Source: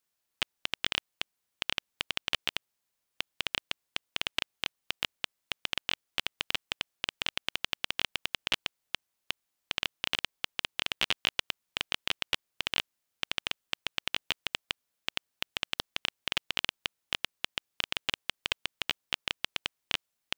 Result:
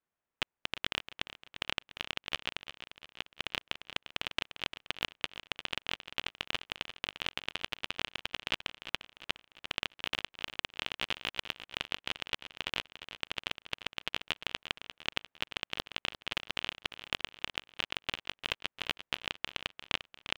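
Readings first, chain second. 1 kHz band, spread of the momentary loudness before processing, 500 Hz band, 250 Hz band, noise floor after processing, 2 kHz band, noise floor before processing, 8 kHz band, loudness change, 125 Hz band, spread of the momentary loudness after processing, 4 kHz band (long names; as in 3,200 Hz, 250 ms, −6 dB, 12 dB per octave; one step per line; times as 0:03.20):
−0.5 dB, 5 LU, 0.0 dB, 0.0 dB, below −85 dBFS, −2.5 dB, −83 dBFS, −6.0 dB, −3.0 dB, 0.0 dB, 4 LU, −4.0 dB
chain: adaptive Wiener filter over 9 samples
speech leveller within 4 dB 0.5 s
high-shelf EQ 3,300 Hz −7.5 dB
on a send: repeating echo 349 ms, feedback 50%, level −12 dB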